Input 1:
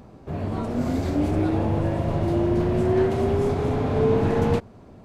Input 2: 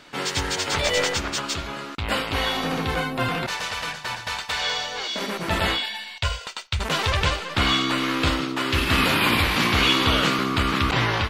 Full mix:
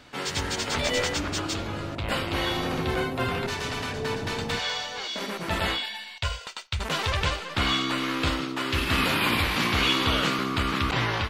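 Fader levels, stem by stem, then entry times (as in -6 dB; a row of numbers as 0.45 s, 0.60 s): -11.5 dB, -4.0 dB; 0.00 s, 0.00 s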